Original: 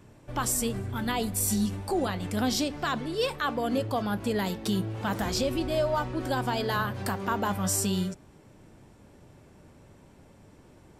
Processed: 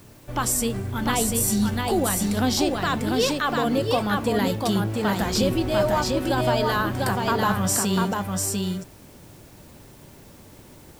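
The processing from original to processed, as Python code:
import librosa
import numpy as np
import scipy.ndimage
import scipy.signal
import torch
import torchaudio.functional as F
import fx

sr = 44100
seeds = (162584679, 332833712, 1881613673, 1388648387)

p1 = fx.quant_dither(x, sr, seeds[0], bits=8, dither='triangular')
p2 = x + F.gain(torch.from_numpy(p1), -10.0).numpy()
p3 = p2 + 10.0 ** (-3.0 / 20.0) * np.pad(p2, (int(696 * sr / 1000.0), 0))[:len(p2)]
y = F.gain(torch.from_numpy(p3), 2.0).numpy()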